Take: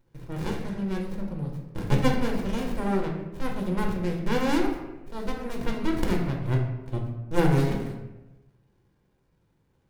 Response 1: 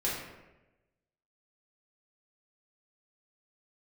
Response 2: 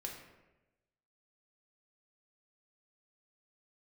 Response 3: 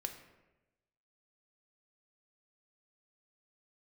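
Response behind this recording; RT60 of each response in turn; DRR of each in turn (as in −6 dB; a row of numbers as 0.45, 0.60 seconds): 2; 1.0, 1.0, 1.0 seconds; −7.5, −0.5, 5.5 decibels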